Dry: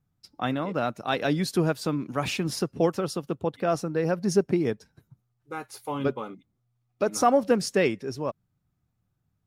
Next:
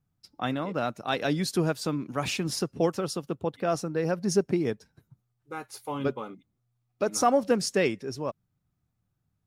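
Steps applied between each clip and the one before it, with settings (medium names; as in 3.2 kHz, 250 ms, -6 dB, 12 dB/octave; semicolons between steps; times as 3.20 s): dynamic bell 6.9 kHz, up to +4 dB, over -46 dBFS, Q 0.73; trim -2 dB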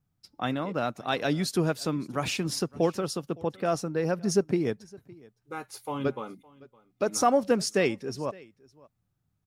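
delay 562 ms -23.5 dB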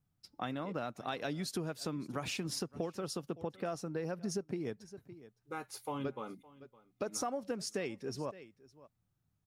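compression 6:1, threshold -31 dBFS, peak gain reduction 13 dB; trim -3.5 dB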